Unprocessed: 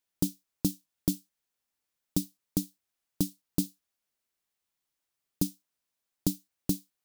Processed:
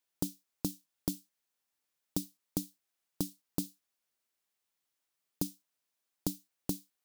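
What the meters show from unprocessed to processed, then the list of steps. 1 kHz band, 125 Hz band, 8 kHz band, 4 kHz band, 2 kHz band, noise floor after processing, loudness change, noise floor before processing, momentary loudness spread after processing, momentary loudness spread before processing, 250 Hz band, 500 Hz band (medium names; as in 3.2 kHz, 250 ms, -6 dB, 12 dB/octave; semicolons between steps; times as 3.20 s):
+2.0 dB, -7.0 dB, -4.5 dB, -4.5 dB, no reading, -85 dBFS, -5.5 dB, under -85 dBFS, 1 LU, 2 LU, -6.5 dB, -3.0 dB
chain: bass shelf 140 Hz -8.5 dB; compression, threshold -29 dBFS, peak gain reduction 6.5 dB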